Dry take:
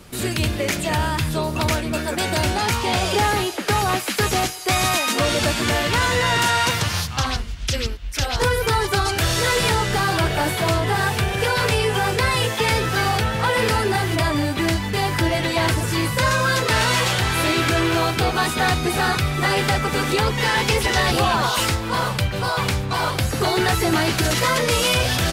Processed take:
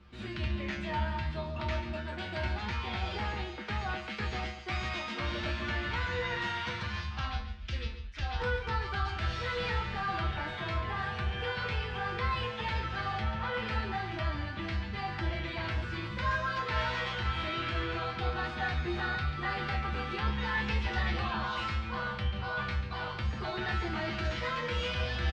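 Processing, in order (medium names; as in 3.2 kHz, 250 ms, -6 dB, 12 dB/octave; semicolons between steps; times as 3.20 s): Bessel low-pass 2.7 kHz, order 4; peaking EQ 460 Hz -8 dB 1.5 oct; feedback comb 70 Hz, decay 0.37 s, harmonics odd, mix 90%; on a send: delay 141 ms -11 dB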